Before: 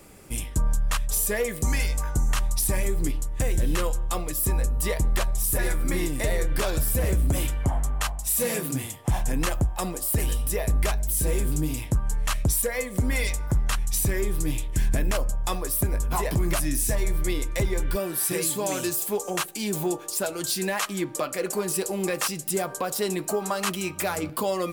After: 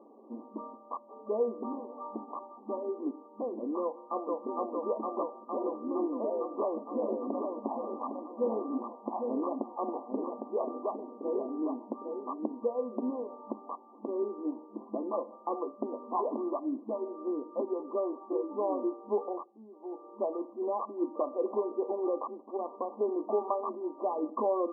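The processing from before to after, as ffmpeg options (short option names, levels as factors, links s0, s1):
-filter_complex "[0:a]asplit=2[s0][s1];[s1]afade=t=in:st=3.82:d=0.01,afade=t=out:st=4.33:d=0.01,aecho=0:1:460|920|1380|1840|2300|2760|3220|3680|4140|4600|5060|5520:0.944061|0.755249|0.604199|0.483359|0.386687|0.30935|0.24748|0.197984|0.158387|0.12671|0.101368|0.0810942[s2];[s0][s2]amix=inputs=2:normalize=0,asplit=3[s3][s4][s5];[s3]afade=t=out:st=6.9:d=0.02[s6];[s4]aecho=1:1:807:0.531,afade=t=in:st=6.9:d=0.02,afade=t=out:st=12.66:d=0.02[s7];[s5]afade=t=in:st=12.66:d=0.02[s8];[s6][s7][s8]amix=inputs=3:normalize=0,asettb=1/sr,asplit=3[s9][s10][s11];[s9]atrim=end=14.624[s12];[s10]atrim=start=14.62:end=15.68,asetpts=PTS-STARTPTS,afade=t=in:d=0.004:c=qsin,afade=t=out:st=1.056:d=0.004:c=qsin,aecho=1:1:5.9:0.49,atrim=end_sample=46746[s13];[s11]atrim=start=15.676[s14];[s12][s13]acrossfade=d=0.004:c1=hsin:c2=qsin[s15];[s15][s14]acrossfade=d=0.004:c1=qsin:c2=hsin,asettb=1/sr,asplit=3[s16][s17][s18];[s16]atrim=end=22.364[s19];[s17]atrim=start=22.36:end=23.01,asetpts=PTS-STARTPTS,afade=t=in:d=0.004:c=qsin,afade=t=out:st=0.646:d=0.004:c=qsin,aeval=exprs='max(val(0),0)':c=same[s20];[s18]atrim=start=23.006[s21];[s19][s20]acrossfade=d=0.004:c1=hsin:c2=qsin[s22];[s22][s21]acrossfade=d=0.004:c1=qsin:c2=hsin,asplit=3[s23][s24][s25];[s23]atrim=end=19.69,asetpts=PTS-STARTPTS,afade=t=out:st=19.23:d=0.46:c=qua:silence=0.11885[s26];[s24]atrim=start=19.69:end=19.71,asetpts=PTS-STARTPTS,volume=0.119[s27];[s25]atrim=start=19.71,asetpts=PTS-STARTPTS,afade=t=in:d=0.46:c=qua:silence=0.11885[s28];[s26][s27][s28]concat=n=3:v=0:a=1,afftfilt=real='re*between(b*sr/4096,210,1200)':imag='im*between(b*sr/4096,210,1200)':win_size=4096:overlap=0.75,volume=0.794"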